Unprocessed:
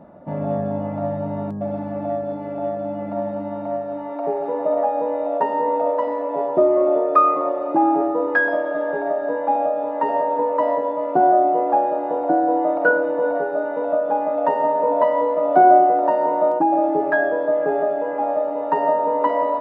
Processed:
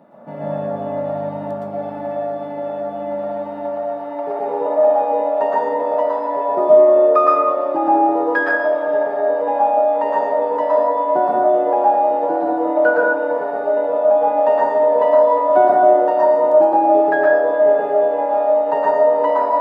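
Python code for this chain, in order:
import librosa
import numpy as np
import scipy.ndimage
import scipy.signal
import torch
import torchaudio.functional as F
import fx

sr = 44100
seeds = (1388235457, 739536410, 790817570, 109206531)

y = scipy.signal.sosfilt(scipy.signal.butter(2, 180.0, 'highpass', fs=sr, output='sos'), x)
y = fx.high_shelf(y, sr, hz=2500.0, db=10.5)
y = fx.rev_plate(y, sr, seeds[0], rt60_s=0.6, hf_ratio=0.3, predelay_ms=105, drr_db=-5.5)
y = y * 10.0 ** (-4.5 / 20.0)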